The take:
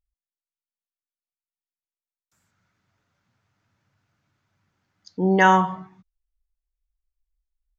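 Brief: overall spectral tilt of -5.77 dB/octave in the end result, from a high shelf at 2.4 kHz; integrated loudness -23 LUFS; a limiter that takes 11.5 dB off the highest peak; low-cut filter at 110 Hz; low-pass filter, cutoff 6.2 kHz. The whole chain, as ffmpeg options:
-af "highpass=110,lowpass=6200,highshelf=f=2400:g=3.5,volume=1.19,alimiter=limit=0.224:level=0:latency=1"

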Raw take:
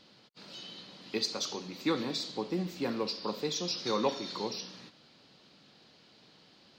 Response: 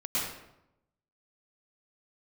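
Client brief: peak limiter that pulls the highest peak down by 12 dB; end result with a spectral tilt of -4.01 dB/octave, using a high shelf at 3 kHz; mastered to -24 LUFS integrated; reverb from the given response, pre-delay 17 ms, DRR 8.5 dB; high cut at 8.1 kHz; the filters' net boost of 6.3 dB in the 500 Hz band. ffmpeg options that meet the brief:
-filter_complex "[0:a]lowpass=8100,equalizer=f=500:t=o:g=7.5,highshelf=f=3000:g=-4,alimiter=limit=0.0668:level=0:latency=1,asplit=2[s0][s1];[1:a]atrim=start_sample=2205,adelay=17[s2];[s1][s2]afir=irnorm=-1:irlink=0,volume=0.158[s3];[s0][s3]amix=inputs=2:normalize=0,volume=3.35"

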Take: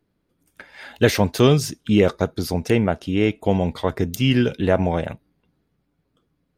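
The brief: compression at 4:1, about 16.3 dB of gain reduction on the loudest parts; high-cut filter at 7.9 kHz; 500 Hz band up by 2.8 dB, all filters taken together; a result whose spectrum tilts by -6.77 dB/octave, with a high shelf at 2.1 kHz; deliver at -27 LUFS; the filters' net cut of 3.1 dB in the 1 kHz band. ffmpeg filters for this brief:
-af "lowpass=7900,equalizer=f=500:t=o:g=5,equalizer=f=1000:t=o:g=-6,highshelf=f=2100:g=-5.5,acompressor=threshold=0.0355:ratio=4,volume=1.88"

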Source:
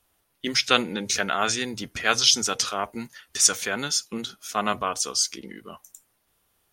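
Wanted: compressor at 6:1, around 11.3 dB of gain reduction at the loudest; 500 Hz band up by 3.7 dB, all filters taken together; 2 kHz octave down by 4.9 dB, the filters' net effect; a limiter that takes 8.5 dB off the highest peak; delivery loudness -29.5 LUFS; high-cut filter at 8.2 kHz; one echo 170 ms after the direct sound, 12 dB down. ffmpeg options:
-af "lowpass=8200,equalizer=f=500:t=o:g=5,equalizer=f=2000:t=o:g=-7.5,acompressor=threshold=0.0447:ratio=6,alimiter=limit=0.0891:level=0:latency=1,aecho=1:1:170:0.251,volume=1.58"

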